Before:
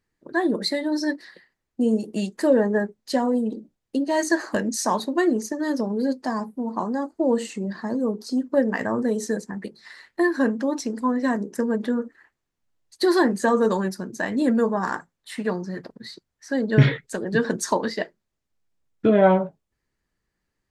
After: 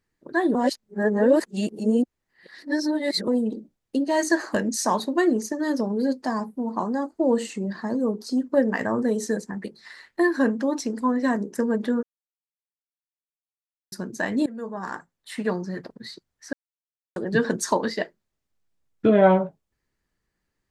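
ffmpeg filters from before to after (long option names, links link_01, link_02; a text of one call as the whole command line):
ffmpeg -i in.wav -filter_complex "[0:a]asplit=8[link_01][link_02][link_03][link_04][link_05][link_06][link_07][link_08];[link_01]atrim=end=0.552[link_09];[link_02]atrim=start=0.548:end=3.282,asetpts=PTS-STARTPTS,areverse[link_10];[link_03]atrim=start=3.278:end=12.03,asetpts=PTS-STARTPTS,afade=type=out:start_time=8.748:duration=0.004:curve=hsin[link_11];[link_04]atrim=start=12.03:end=13.92,asetpts=PTS-STARTPTS,volume=0[link_12];[link_05]atrim=start=13.92:end=14.46,asetpts=PTS-STARTPTS,afade=type=in:duration=0.004:curve=hsin,afade=type=out:start_time=0.536:duration=0.004:curve=hsin:silence=0.0707946[link_13];[link_06]atrim=start=14.46:end=16.53,asetpts=PTS-STARTPTS,afade=type=in:duration=0.95:silence=0.0707946,afade=type=out:start_time=2.066:duration=0.004:curve=hsin[link_14];[link_07]atrim=start=16.53:end=17.16,asetpts=PTS-STARTPTS,volume=0[link_15];[link_08]atrim=start=17.16,asetpts=PTS-STARTPTS,afade=type=in:duration=0.004:curve=hsin[link_16];[link_09][link_10]acrossfade=duration=0.004:curve1=hsin:curve2=hsin[link_17];[link_11][link_12][link_13][link_14][link_15][link_16]concat=n=6:v=0:a=1[link_18];[link_17][link_18]acrossfade=duration=0.004:curve1=hsin:curve2=hsin" out.wav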